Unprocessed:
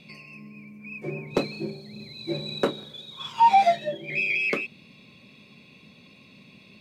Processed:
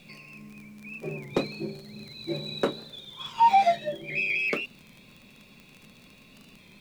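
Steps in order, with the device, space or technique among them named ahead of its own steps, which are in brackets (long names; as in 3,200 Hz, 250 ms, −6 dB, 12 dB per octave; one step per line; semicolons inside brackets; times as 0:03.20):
warped LP (wow of a warped record 33 1/3 rpm, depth 100 cents; surface crackle 33 per second −35 dBFS; pink noise bed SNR 32 dB)
level −2 dB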